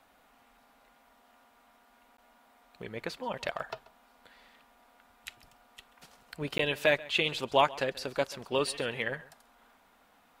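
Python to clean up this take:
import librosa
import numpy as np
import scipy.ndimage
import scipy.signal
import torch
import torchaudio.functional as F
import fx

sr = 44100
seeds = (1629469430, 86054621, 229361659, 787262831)

y = fx.fix_interpolate(x, sr, at_s=(2.17, 6.58), length_ms=13.0)
y = fx.fix_echo_inverse(y, sr, delay_ms=135, level_db=-20.5)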